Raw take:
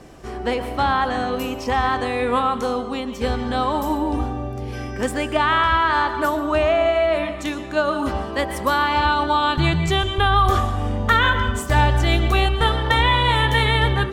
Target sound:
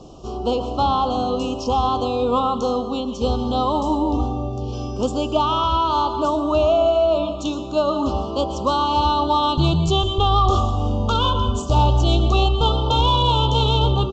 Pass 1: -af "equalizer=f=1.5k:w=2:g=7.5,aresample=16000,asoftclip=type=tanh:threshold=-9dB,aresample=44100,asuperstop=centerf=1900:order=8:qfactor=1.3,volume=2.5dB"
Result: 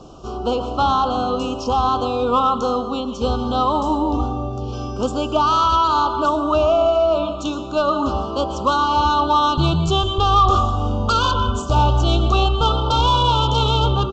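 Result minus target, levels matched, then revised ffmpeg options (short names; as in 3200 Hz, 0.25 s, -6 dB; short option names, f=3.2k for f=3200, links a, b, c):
2000 Hz band +4.5 dB
-af "equalizer=f=1.5k:w=2:g=-4.5,aresample=16000,asoftclip=type=tanh:threshold=-9dB,aresample=44100,asuperstop=centerf=1900:order=8:qfactor=1.3,volume=2.5dB"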